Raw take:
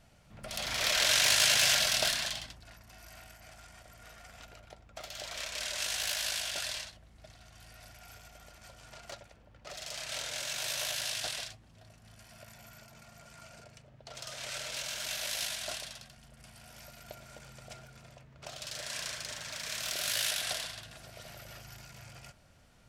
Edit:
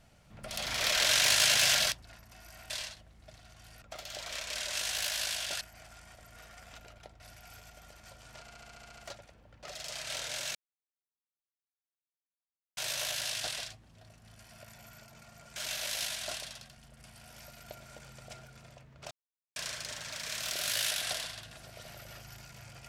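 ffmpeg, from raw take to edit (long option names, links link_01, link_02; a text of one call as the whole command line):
ffmpeg -i in.wav -filter_complex "[0:a]asplit=18[link_01][link_02][link_03][link_04][link_05][link_06][link_07][link_08][link_09][link_10][link_11][link_12][link_13][link_14][link_15][link_16][link_17][link_18];[link_01]atrim=end=1.922[link_19];[link_02]atrim=start=2.498:end=3.282[link_20];[link_03]atrim=start=6.658:end=7.782[link_21];[link_04]atrim=start=4.868:end=6.662[link_22];[link_05]atrim=start=3.278:end=4.872[link_23];[link_06]atrim=start=7.778:end=9.062[link_24];[link_07]atrim=start=8.988:end=9.062[link_25];[link_08]atrim=start=8.988:end=9.062[link_26];[link_09]atrim=start=8.988:end=9.062[link_27];[link_10]atrim=start=8.988:end=9.062[link_28];[link_11]atrim=start=8.988:end=9.062[link_29];[link_12]atrim=start=8.988:end=9.062[link_30];[link_13]atrim=start=8.988:end=9.062[link_31];[link_14]atrim=start=8.988:end=10.57,asetpts=PTS-STARTPTS,afade=type=out:start_time=1.578:duration=0.004:curve=hsin,apad=pad_dur=2.22[link_32];[link_15]atrim=start=10.57:end=13.362,asetpts=PTS-STARTPTS,afade=type=in:duration=0.004:curve=hsin[link_33];[link_16]atrim=start=14.958:end=18.51,asetpts=PTS-STARTPTS,afade=type=out:start_time=3.548:duration=0.004:curve=hsin[link_34];[link_17]atrim=start=18.51:end=18.96,asetpts=PTS-STARTPTS,volume=0[link_35];[link_18]atrim=start=18.96,asetpts=PTS-STARTPTS,afade=type=in:duration=0.004:curve=hsin[link_36];[link_19][link_20]acrossfade=duration=0.004:curve1=hsin:curve2=hsin[link_37];[link_37][link_21]acrossfade=duration=0.004:curve1=hsin:curve2=hsin[link_38];[link_38][link_22]acrossfade=duration=0.004:curve1=hsin:curve2=hsin[link_39];[link_39][link_23]acrossfade=duration=0.004:curve1=hsin:curve2=hsin[link_40];[link_40][link_24]acrossfade=duration=0.004:curve1=hsin:curve2=hsin[link_41];[link_41][link_25]acrossfade=duration=0.004:curve1=hsin:curve2=hsin[link_42];[link_42][link_26]acrossfade=duration=0.004:curve1=hsin:curve2=hsin[link_43];[link_43][link_27]acrossfade=duration=0.004:curve1=hsin:curve2=hsin[link_44];[link_44][link_28]acrossfade=duration=0.004:curve1=hsin:curve2=hsin[link_45];[link_45][link_29]acrossfade=duration=0.004:curve1=hsin:curve2=hsin[link_46];[link_46][link_30]acrossfade=duration=0.004:curve1=hsin:curve2=hsin[link_47];[link_47][link_31]acrossfade=duration=0.004:curve1=hsin:curve2=hsin[link_48];[link_32][link_33]concat=n=2:v=0:a=1[link_49];[link_48][link_49]acrossfade=duration=0.004:curve1=hsin:curve2=hsin[link_50];[link_34][link_35][link_36]concat=n=3:v=0:a=1[link_51];[link_50][link_51]acrossfade=duration=0.004:curve1=hsin:curve2=hsin" out.wav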